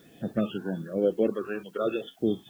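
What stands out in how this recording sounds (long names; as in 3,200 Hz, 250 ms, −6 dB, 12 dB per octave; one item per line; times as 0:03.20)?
phaser sweep stages 6, 1.1 Hz, lowest notch 530–1,100 Hz
a quantiser's noise floor 12 bits, dither triangular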